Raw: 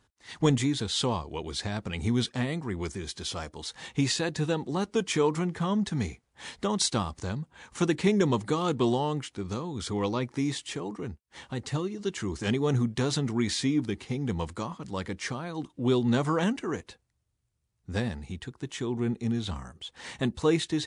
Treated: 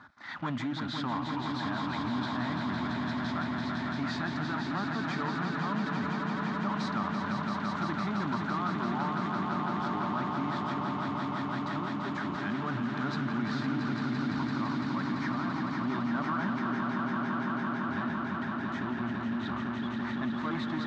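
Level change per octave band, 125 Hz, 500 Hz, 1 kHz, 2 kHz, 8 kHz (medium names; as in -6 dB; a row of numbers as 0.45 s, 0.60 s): -5.5 dB, -10.0 dB, +3.5 dB, +3.0 dB, under -15 dB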